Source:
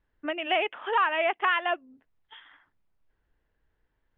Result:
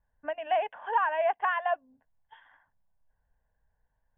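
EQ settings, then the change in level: resonant high shelf 1.8 kHz -7.5 dB, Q 3; static phaser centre 1.3 kHz, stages 6; 0.0 dB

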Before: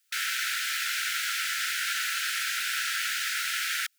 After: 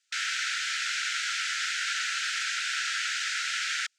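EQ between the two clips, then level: distance through air 130 m; peaking EQ 7.3 kHz +11 dB 1.2 oct; 0.0 dB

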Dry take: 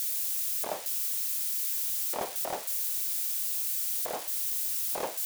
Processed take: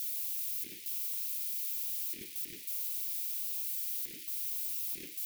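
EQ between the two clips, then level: elliptic band-stop 330–2200 Hz, stop band 60 dB; peaking EQ 7.7 kHz -5.5 dB 0.92 oct; -4.5 dB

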